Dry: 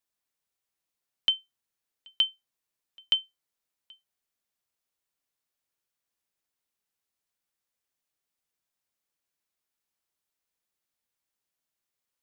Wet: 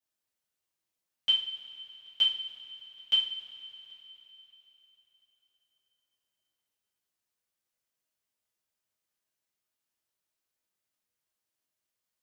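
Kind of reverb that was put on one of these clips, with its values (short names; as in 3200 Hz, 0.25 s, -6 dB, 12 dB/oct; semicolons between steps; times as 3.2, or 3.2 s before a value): two-slope reverb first 0.44 s, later 3.8 s, from -18 dB, DRR -9.5 dB; gain -10.5 dB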